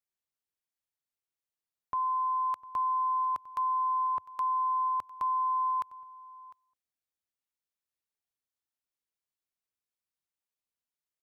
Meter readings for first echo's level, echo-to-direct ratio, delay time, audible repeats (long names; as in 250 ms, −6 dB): −20.0 dB, −20.0 dB, 703 ms, 1